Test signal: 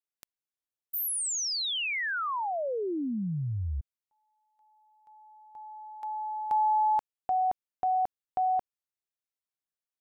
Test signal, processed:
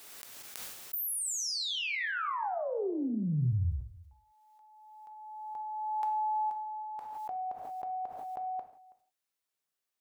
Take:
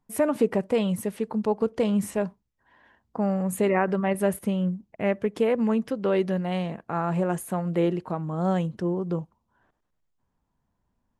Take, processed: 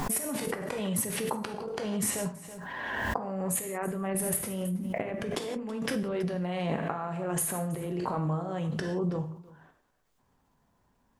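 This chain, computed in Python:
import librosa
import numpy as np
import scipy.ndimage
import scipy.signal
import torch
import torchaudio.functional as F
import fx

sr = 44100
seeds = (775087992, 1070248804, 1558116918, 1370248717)

p1 = fx.low_shelf(x, sr, hz=140.0, db=-8.5)
p2 = fx.over_compress(p1, sr, threshold_db=-36.0, ratio=-1.0)
p3 = p2 + fx.echo_single(p2, sr, ms=326, db=-21.5, dry=0)
p4 = fx.rev_gated(p3, sr, seeds[0], gate_ms=200, shape='falling', drr_db=5.0)
y = fx.pre_swell(p4, sr, db_per_s=24.0)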